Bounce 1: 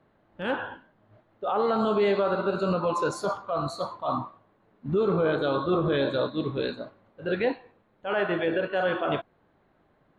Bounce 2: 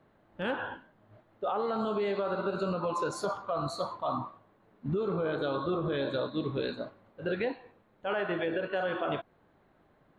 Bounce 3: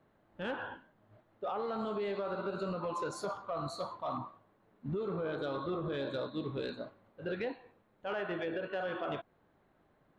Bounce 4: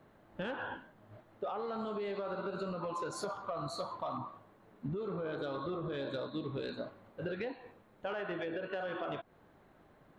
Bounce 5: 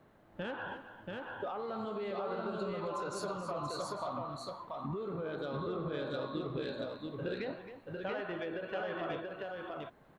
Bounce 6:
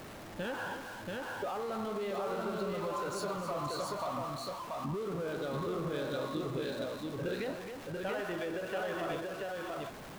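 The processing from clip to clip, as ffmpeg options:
-af "acompressor=threshold=-28dB:ratio=6"
-af "asoftclip=type=tanh:threshold=-21dB,volume=-4.5dB"
-af "acompressor=threshold=-43dB:ratio=6,volume=7dB"
-af "aecho=1:1:269|683:0.266|0.708,volume=-1dB"
-af "aeval=exprs='val(0)+0.5*0.0075*sgn(val(0))':c=same"

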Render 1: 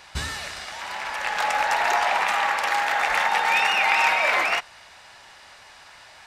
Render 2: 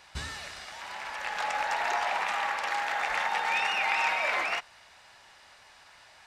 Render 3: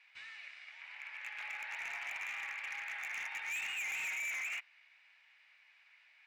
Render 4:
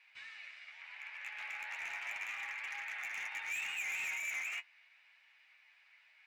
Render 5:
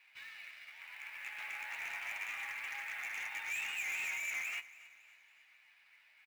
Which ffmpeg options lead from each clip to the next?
-filter_complex "[0:a]acrossover=split=9100[a][b];[b]acompressor=threshold=-52dB:ratio=4:attack=1:release=60[c];[a][c]amix=inputs=2:normalize=0,volume=-7.5dB"
-af "bandpass=f=2.3k:t=q:w=5.4:csg=0,asoftclip=type=hard:threshold=-35.5dB,volume=-1dB"
-af "flanger=delay=7.3:depth=5.6:regen=39:speed=0.36:shape=triangular,volume=3.5dB"
-af "acrusher=bits=4:mode=log:mix=0:aa=0.000001,aecho=1:1:279|558|837|1116:0.112|0.0561|0.0281|0.014"

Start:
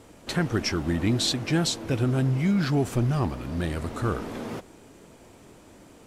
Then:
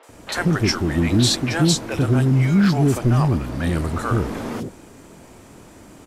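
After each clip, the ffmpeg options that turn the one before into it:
-filter_complex "[0:a]acrossover=split=480|3300[a][b][c];[c]adelay=30[d];[a]adelay=90[e];[e][b][d]amix=inputs=3:normalize=0,volume=7.5dB"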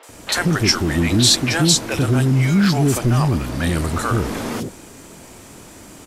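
-filter_complex "[0:a]asplit=2[a][b];[b]alimiter=limit=-14.5dB:level=0:latency=1,volume=-2dB[c];[a][c]amix=inputs=2:normalize=0,highshelf=f=2.4k:g=8,volume=-3dB"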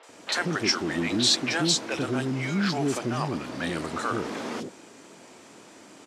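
-af "highpass=240,lowpass=6.4k,volume=-6dB"

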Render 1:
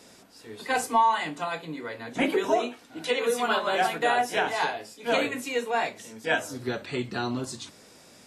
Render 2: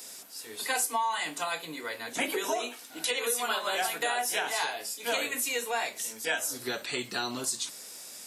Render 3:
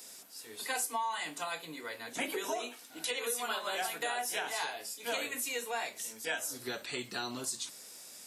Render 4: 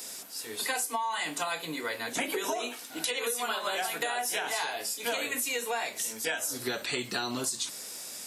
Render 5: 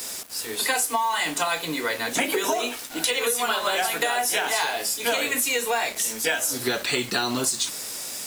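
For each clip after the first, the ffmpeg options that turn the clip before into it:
-af "aemphasis=mode=production:type=riaa,acompressor=threshold=-28dB:ratio=3"
-af "lowshelf=f=180:g=3,volume=-5.5dB"
-af "acompressor=threshold=-37dB:ratio=6,volume=9dB"
-af "acrusher=bits=6:mix=0:aa=0.5,volume=7.5dB"

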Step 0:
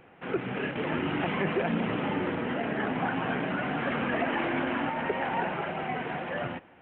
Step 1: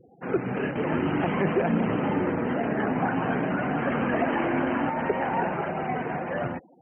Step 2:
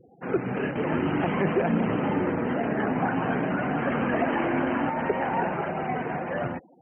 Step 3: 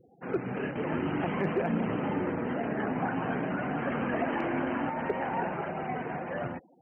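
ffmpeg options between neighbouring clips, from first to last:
-af "lowpass=f=1.3k:p=1,afftfilt=real='re*gte(hypot(re,im),0.00562)':imag='im*gte(hypot(re,im),0.00562)':win_size=1024:overlap=0.75,volume=5dB"
-af anull
-af "asoftclip=type=hard:threshold=-13.5dB,volume=-5dB"

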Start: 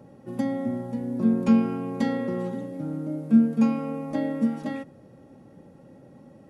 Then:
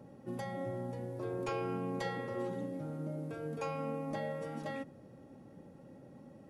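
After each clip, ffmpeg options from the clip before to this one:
-af "afftfilt=real='re*lt(hypot(re,im),0.224)':imag='im*lt(hypot(re,im),0.224)':win_size=1024:overlap=0.75,volume=-4.5dB"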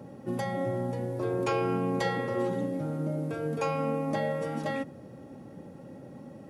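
-af "highpass=60,volume=8.5dB"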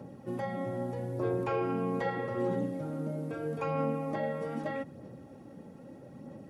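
-filter_complex "[0:a]acrossover=split=2600[a][b];[b]acompressor=threshold=-57dB:ratio=4:attack=1:release=60[c];[a][c]amix=inputs=2:normalize=0,aphaser=in_gain=1:out_gain=1:delay=4.6:decay=0.31:speed=0.79:type=sinusoidal,volume=-3.5dB"

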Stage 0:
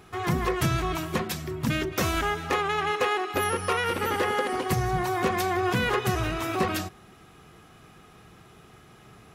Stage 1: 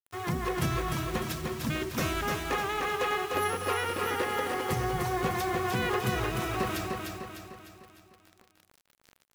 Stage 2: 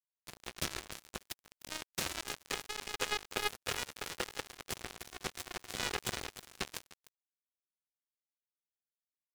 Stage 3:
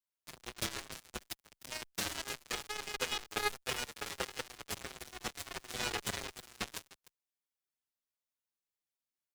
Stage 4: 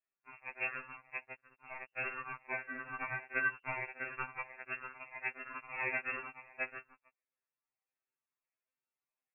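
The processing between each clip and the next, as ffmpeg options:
-filter_complex "[0:a]acrusher=bits=6:mix=0:aa=0.000001,asplit=2[a][b];[b]aecho=0:1:301|602|903|1204|1505|1806:0.631|0.309|0.151|0.0742|0.0364|0.0178[c];[a][c]amix=inputs=2:normalize=0,volume=-5.5dB"
-af "equalizer=f=125:t=o:w=1:g=-7,equalizer=f=250:t=o:w=1:g=-4,equalizer=f=1k:t=o:w=1:g=-10,equalizer=f=4k:t=o:w=1:g=5,equalizer=f=8k:t=o:w=1:g=8,equalizer=f=16k:t=o:w=1:g=-12,acrusher=bits=3:mix=0:aa=0.5,volume=1.5dB"
-filter_complex "[0:a]asplit=2[a][b];[b]adelay=6.6,afreqshift=-1.5[c];[a][c]amix=inputs=2:normalize=1,volume=3dB"
-af "lowpass=f=2.4k:t=q:w=0.5098,lowpass=f=2.4k:t=q:w=0.6013,lowpass=f=2.4k:t=q:w=0.9,lowpass=f=2.4k:t=q:w=2.563,afreqshift=-2800,afftfilt=real='re*2.45*eq(mod(b,6),0)':imag='im*2.45*eq(mod(b,6),0)':win_size=2048:overlap=0.75,volume=4.5dB"

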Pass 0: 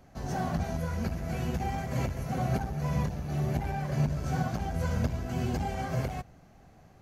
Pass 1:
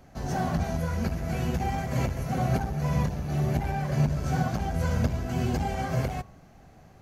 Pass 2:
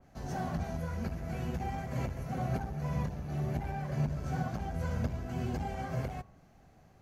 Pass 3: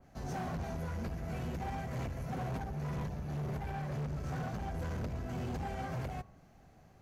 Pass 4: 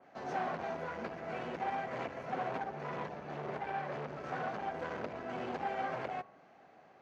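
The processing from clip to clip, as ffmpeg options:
-af "bandreject=f=101.1:t=h:w=4,bandreject=f=202.2:t=h:w=4,bandreject=f=303.3:t=h:w=4,bandreject=f=404.4:t=h:w=4,bandreject=f=505.5:t=h:w=4,bandreject=f=606.6:t=h:w=4,bandreject=f=707.7:t=h:w=4,bandreject=f=808.8:t=h:w=4,bandreject=f=909.9:t=h:w=4,bandreject=f=1.011k:t=h:w=4,bandreject=f=1.1121k:t=h:w=4,bandreject=f=1.2132k:t=h:w=4,volume=3.5dB"
-af "adynamicequalizer=threshold=0.00282:dfrequency=2700:dqfactor=0.7:tfrequency=2700:tqfactor=0.7:attack=5:release=100:ratio=0.375:range=2:mode=cutabove:tftype=highshelf,volume=-7.5dB"
-af "asoftclip=type=hard:threshold=-34.5dB"
-af "highpass=400,lowpass=2.9k,volume=6dB"

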